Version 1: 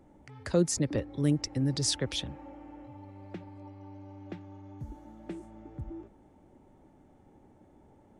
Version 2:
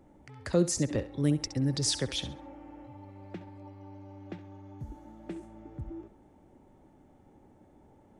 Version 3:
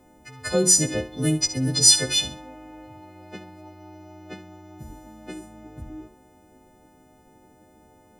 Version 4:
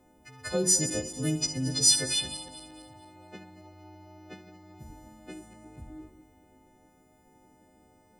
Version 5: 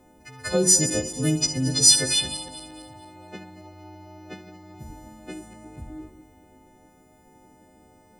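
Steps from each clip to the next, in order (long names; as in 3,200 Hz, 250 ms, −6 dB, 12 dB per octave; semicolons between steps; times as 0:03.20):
feedback echo with a high-pass in the loop 67 ms, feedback 28%, level −12.5 dB
every partial snapped to a pitch grid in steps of 3 semitones; hum removal 45.52 Hz, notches 27; level +5 dB
feedback delay that plays each chunk backwards 113 ms, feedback 63%, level −12.5 dB; level −6.5 dB
echo ahead of the sound 59 ms −24 dB; level +6 dB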